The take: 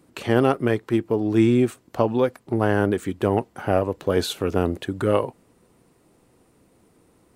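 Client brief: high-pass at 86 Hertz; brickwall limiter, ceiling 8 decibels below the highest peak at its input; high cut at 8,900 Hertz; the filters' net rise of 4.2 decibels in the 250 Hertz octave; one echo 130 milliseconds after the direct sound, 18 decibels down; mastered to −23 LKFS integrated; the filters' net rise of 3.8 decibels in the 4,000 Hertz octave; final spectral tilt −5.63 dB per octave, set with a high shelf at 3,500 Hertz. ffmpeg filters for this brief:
ffmpeg -i in.wav -af "highpass=86,lowpass=8900,equalizer=frequency=250:width_type=o:gain=5.5,highshelf=frequency=3500:gain=-7,equalizer=frequency=4000:width_type=o:gain=9,alimiter=limit=-11.5dB:level=0:latency=1,aecho=1:1:130:0.126,volume=0.5dB" out.wav

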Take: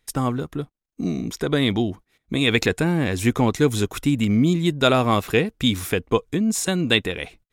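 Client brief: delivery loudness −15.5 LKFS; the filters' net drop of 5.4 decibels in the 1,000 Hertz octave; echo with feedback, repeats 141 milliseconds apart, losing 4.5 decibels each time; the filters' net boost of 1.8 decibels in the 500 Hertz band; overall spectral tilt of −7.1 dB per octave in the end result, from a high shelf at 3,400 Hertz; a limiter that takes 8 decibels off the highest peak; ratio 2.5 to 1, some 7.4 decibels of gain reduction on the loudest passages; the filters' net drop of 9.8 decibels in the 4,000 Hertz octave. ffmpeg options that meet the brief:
ffmpeg -i in.wav -af "equalizer=frequency=500:width_type=o:gain=4,equalizer=frequency=1000:width_type=o:gain=-7.5,highshelf=frequency=3400:gain=-7,equalizer=frequency=4000:width_type=o:gain=-7,acompressor=threshold=-24dB:ratio=2.5,alimiter=limit=-20dB:level=0:latency=1,aecho=1:1:141|282|423|564|705|846|987|1128|1269:0.596|0.357|0.214|0.129|0.0772|0.0463|0.0278|0.0167|0.01,volume=13dB" out.wav

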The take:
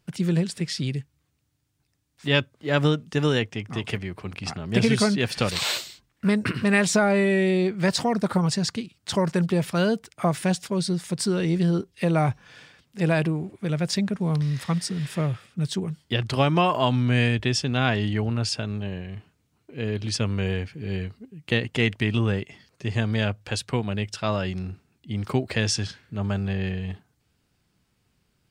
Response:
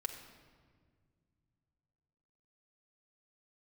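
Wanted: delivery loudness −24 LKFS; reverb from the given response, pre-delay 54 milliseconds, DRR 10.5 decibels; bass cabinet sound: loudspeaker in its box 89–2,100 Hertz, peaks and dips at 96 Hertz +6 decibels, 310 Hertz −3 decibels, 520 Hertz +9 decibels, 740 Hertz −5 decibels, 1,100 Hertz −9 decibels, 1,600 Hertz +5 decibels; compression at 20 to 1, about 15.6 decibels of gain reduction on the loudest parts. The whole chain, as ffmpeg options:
-filter_complex "[0:a]acompressor=threshold=-31dB:ratio=20,asplit=2[link_01][link_02];[1:a]atrim=start_sample=2205,adelay=54[link_03];[link_02][link_03]afir=irnorm=-1:irlink=0,volume=-10.5dB[link_04];[link_01][link_04]amix=inputs=2:normalize=0,highpass=frequency=89:width=0.5412,highpass=frequency=89:width=1.3066,equalizer=frequency=96:width_type=q:width=4:gain=6,equalizer=frequency=310:width_type=q:width=4:gain=-3,equalizer=frequency=520:width_type=q:width=4:gain=9,equalizer=frequency=740:width_type=q:width=4:gain=-5,equalizer=frequency=1100:width_type=q:width=4:gain=-9,equalizer=frequency=1600:width_type=q:width=4:gain=5,lowpass=frequency=2100:width=0.5412,lowpass=frequency=2100:width=1.3066,volume=12dB"

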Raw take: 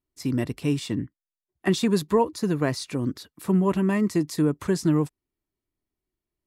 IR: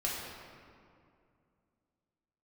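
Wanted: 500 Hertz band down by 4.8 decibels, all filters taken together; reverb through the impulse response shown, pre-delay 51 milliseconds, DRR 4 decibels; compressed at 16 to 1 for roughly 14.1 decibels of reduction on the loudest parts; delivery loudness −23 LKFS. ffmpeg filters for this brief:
-filter_complex "[0:a]equalizer=frequency=500:width_type=o:gain=-6.5,acompressor=threshold=-33dB:ratio=16,asplit=2[link_01][link_02];[1:a]atrim=start_sample=2205,adelay=51[link_03];[link_02][link_03]afir=irnorm=-1:irlink=0,volume=-9.5dB[link_04];[link_01][link_04]amix=inputs=2:normalize=0,volume=14.5dB"

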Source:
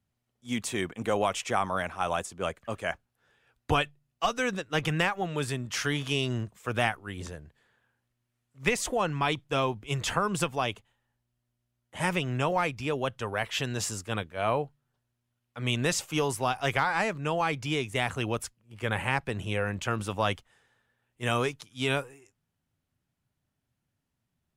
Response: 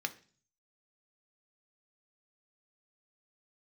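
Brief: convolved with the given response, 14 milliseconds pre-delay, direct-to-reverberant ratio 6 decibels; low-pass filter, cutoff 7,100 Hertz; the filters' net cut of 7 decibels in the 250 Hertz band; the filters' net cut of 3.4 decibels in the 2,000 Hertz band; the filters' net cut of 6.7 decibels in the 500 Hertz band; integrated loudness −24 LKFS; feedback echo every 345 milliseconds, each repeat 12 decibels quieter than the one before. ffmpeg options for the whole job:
-filter_complex "[0:a]lowpass=7100,equalizer=frequency=250:width_type=o:gain=-8.5,equalizer=frequency=500:width_type=o:gain=-6,equalizer=frequency=2000:width_type=o:gain=-4,aecho=1:1:345|690|1035:0.251|0.0628|0.0157,asplit=2[link_01][link_02];[1:a]atrim=start_sample=2205,adelay=14[link_03];[link_02][link_03]afir=irnorm=-1:irlink=0,volume=-8.5dB[link_04];[link_01][link_04]amix=inputs=2:normalize=0,volume=9dB"

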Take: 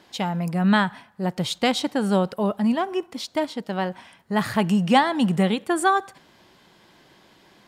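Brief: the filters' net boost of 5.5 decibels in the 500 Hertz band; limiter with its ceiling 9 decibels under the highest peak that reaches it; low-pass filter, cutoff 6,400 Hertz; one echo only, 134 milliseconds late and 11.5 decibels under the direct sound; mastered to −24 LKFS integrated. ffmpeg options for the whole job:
ffmpeg -i in.wav -af "lowpass=6400,equalizer=frequency=500:width_type=o:gain=7,alimiter=limit=-10.5dB:level=0:latency=1,aecho=1:1:134:0.266,volume=-1.5dB" out.wav

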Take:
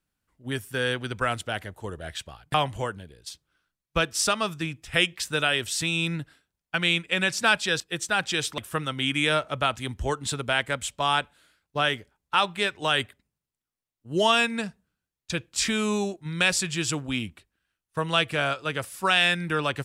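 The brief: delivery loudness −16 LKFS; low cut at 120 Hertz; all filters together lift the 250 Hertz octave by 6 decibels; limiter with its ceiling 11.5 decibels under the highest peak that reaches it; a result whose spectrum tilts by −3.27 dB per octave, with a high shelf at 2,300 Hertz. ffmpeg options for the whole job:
ffmpeg -i in.wav -af "highpass=120,equalizer=frequency=250:width_type=o:gain=8.5,highshelf=frequency=2300:gain=4.5,volume=11dB,alimiter=limit=-4dB:level=0:latency=1" out.wav

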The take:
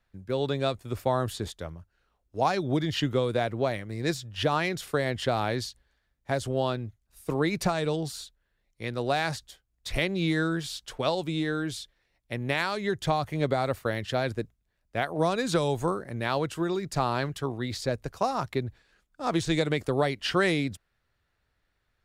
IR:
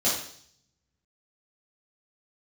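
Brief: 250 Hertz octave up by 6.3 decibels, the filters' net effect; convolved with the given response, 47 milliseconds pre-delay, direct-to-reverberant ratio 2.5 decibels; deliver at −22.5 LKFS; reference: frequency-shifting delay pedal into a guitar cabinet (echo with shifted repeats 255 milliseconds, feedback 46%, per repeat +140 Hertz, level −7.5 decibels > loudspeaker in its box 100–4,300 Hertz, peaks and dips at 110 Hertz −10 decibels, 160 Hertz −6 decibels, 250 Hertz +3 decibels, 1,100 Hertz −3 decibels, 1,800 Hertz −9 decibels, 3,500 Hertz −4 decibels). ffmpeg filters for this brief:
-filter_complex "[0:a]equalizer=frequency=250:width_type=o:gain=8,asplit=2[link_01][link_02];[1:a]atrim=start_sample=2205,adelay=47[link_03];[link_02][link_03]afir=irnorm=-1:irlink=0,volume=-14.5dB[link_04];[link_01][link_04]amix=inputs=2:normalize=0,asplit=6[link_05][link_06][link_07][link_08][link_09][link_10];[link_06]adelay=255,afreqshift=140,volume=-7.5dB[link_11];[link_07]adelay=510,afreqshift=280,volume=-14.2dB[link_12];[link_08]adelay=765,afreqshift=420,volume=-21dB[link_13];[link_09]adelay=1020,afreqshift=560,volume=-27.7dB[link_14];[link_10]adelay=1275,afreqshift=700,volume=-34.5dB[link_15];[link_05][link_11][link_12][link_13][link_14][link_15]amix=inputs=6:normalize=0,highpass=100,equalizer=frequency=110:width_type=q:width=4:gain=-10,equalizer=frequency=160:width_type=q:width=4:gain=-6,equalizer=frequency=250:width_type=q:width=4:gain=3,equalizer=frequency=1100:width_type=q:width=4:gain=-3,equalizer=frequency=1800:width_type=q:width=4:gain=-9,equalizer=frequency=3500:width_type=q:width=4:gain=-4,lowpass=frequency=4300:width=0.5412,lowpass=frequency=4300:width=1.3066,volume=1dB"

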